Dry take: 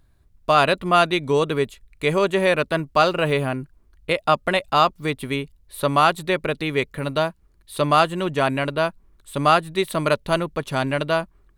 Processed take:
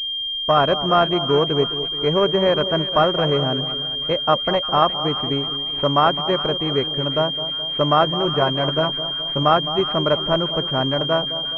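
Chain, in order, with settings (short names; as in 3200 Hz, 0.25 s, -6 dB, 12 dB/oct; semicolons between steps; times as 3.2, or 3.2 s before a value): 8.05–9.43 doubler 13 ms -6 dB; split-band echo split 1200 Hz, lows 0.211 s, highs 0.351 s, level -12 dB; pulse-width modulation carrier 3200 Hz; gain +1.5 dB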